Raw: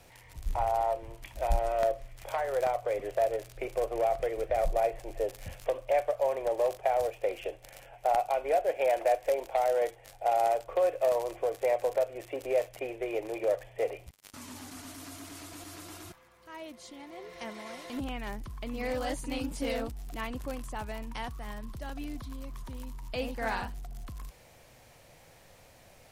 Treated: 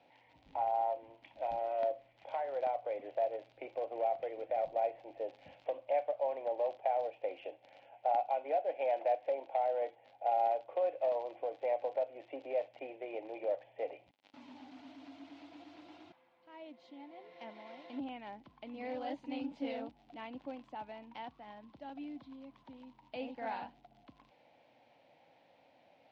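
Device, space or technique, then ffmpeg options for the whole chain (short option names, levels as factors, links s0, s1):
kitchen radio: -filter_complex "[0:a]asettb=1/sr,asplit=3[s0][s1][s2];[s0]atrim=end=9.274[s3];[s1]atrim=start=9.27:end=10.25,asetpts=PTS-STARTPTS,afade=t=in:d=0.004:c=qsin,afade=t=out:st=0.976:d=0.004:c=qsin,highshelf=f=6700:g=-9.5[s4];[s2]atrim=start=10.246[s5];[s3][s4]acrossfade=d=0.004:c1=hsin:c2=qsin[s6];[s6][s5]acrossfade=d=0.004:c1=qsin:c2=hsin,highpass=230,equalizer=f=280:t=q:w=4:g=8,equalizer=f=400:t=q:w=4:g=-6,equalizer=f=580:t=q:w=4:g=3,equalizer=f=820:t=q:w=4:g=7,equalizer=f=1200:t=q:w=4:g=-8,equalizer=f=1700:t=q:w=4:g=-5,lowpass=f=3700:w=0.5412,lowpass=f=3700:w=1.3066,volume=0.376"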